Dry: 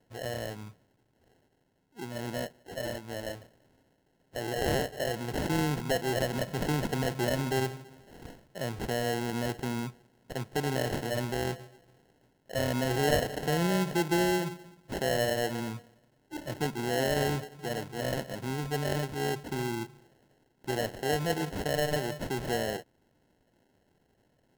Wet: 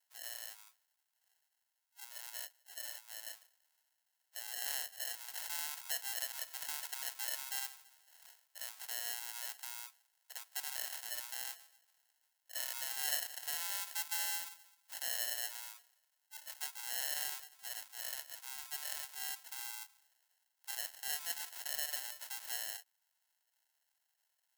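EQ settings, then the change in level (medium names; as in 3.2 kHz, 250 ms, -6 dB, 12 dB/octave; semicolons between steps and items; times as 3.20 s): ladder high-pass 690 Hz, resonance 30%; differentiator; +7.0 dB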